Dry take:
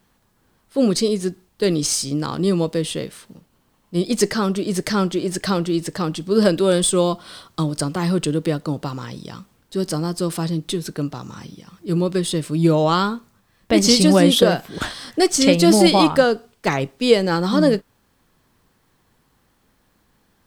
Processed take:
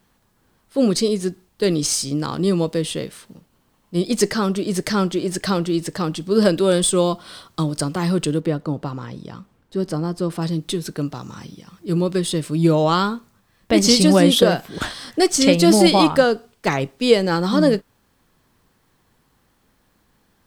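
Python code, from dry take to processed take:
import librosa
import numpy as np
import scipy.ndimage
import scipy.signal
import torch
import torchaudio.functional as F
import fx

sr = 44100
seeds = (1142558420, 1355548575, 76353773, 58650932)

y = fx.high_shelf(x, sr, hz=3000.0, db=-11.5, at=(8.4, 10.42))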